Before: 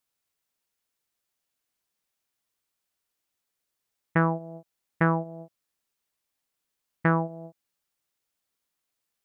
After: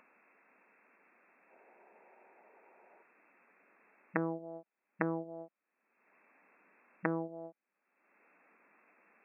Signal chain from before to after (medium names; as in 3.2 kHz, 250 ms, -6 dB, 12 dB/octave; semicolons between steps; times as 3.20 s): single-diode clipper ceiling -25 dBFS; low-pass that closes with the level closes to 440 Hz, closed at -25 dBFS; brick-wall FIR band-pass 180–2700 Hz; upward compressor, threshold -44 dBFS; time-frequency box 1.50–3.03 s, 340–970 Hz +10 dB; trim -2 dB